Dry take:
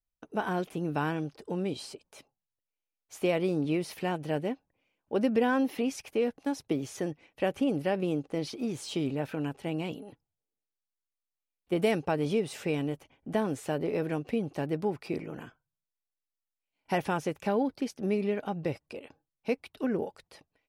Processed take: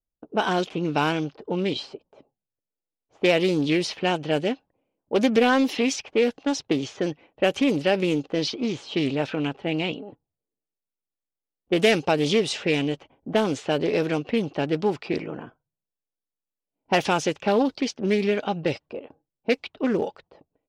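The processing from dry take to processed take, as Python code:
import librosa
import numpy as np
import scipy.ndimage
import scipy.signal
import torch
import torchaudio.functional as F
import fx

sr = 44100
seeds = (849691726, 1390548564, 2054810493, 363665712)

p1 = np.clip(10.0 ** (25.5 / 20.0) * x, -1.0, 1.0) / 10.0 ** (25.5 / 20.0)
p2 = x + (p1 * librosa.db_to_amplitude(-10.0))
p3 = fx.low_shelf(p2, sr, hz=180.0, db=-8.5)
p4 = fx.env_lowpass(p3, sr, base_hz=460.0, full_db=-24.5)
p5 = fx.band_shelf(p4, sr, hz=4600.0, db=9.0, octaves=1.7)
p6 = fx.doppler_dist(p5, sr, depth_ms=0.16)
y = p6 * librosa.db_to_amplitude(6.5)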